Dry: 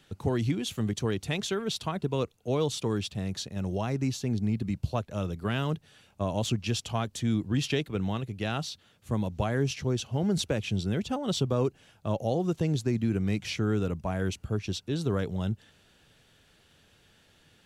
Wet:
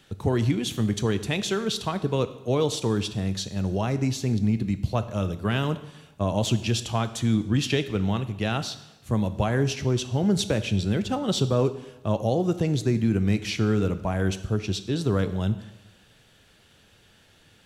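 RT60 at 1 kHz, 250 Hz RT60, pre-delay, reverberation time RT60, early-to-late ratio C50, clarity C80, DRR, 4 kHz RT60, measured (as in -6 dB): 1.0 s, 1.0 s, 4 ms, 1.0 s, 13.5 dB, 15.5 dB, 11.0 dB, 0.95 s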